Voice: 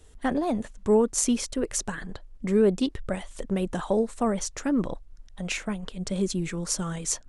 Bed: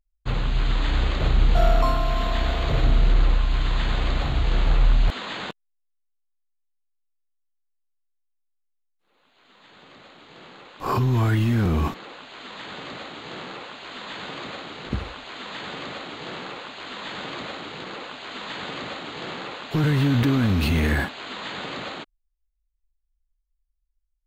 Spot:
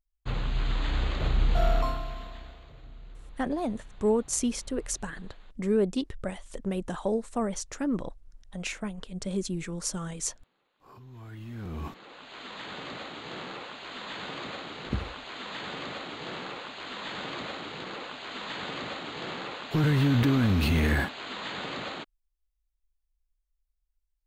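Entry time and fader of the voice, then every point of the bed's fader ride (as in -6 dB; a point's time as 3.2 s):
3.15 s, -4.0 dB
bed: 1.78 s -6 dB
2.75 s -29 dB
11.02 s -29 dB
12.35 s -3 dB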